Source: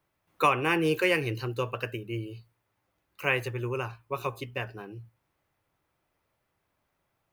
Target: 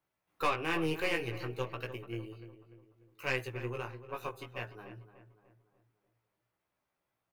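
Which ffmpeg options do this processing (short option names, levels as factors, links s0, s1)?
-filter_complex "[0:a]lowshelf=f=110:g=-7,aeval=exprs='(tanh(7.94*val(0)+0.65)-tanh(0.65))/7.94':c=same,flanger=delay=15.5:depth=3.1:speed=0.59,asplit=2[s0][s1];[s1]adelay=295,lowpass=f=1900:p=1,volume=0.251,asplit=2[s2][s3];[s3]adelay=295,lowpass=f=1900:p=1,volume=0.47,asplit=2[s4][s5];[s5]adelay=295,lowpass=f=1900:p=1,volume=0.47,asplit=2[s6][s7];[s7]adelay=295,lowpass=f=1900:p=1,volume=0.47,asplit=2[s8][s9];[s9]adelay=295,lowpass=f=1900:p=1,volume=0.47[s10];[s2][s4][s6][s8][s10]amix=inputs=5:normalize=0[s11];[s0][s11]amix=inputs=2:normalize=0,volume=0.891"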